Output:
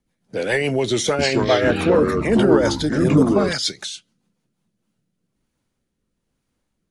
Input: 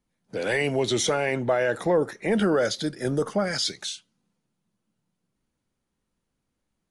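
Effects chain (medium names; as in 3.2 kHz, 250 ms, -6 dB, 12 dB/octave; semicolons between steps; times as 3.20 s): 0.96–3.53 s: ever faster or slower copies 227 ms, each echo -5 st, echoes 3; rotary cabinet horn 7 Hz, later 1.1 Hz, at 4.18 s; trim +6.5 dB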